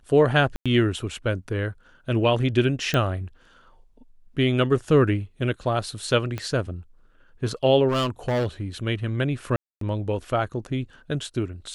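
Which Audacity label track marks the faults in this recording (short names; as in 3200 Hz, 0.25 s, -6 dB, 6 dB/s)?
0.560000	0.660000	gap 96 ms
2.940000	2.940000	pop -10 dBFS
6.380000	6.380000	pop -16 dBFS
7.880000	8.460000	clipped -20 dBFS
9.560000	9.810000	gap 0.253 s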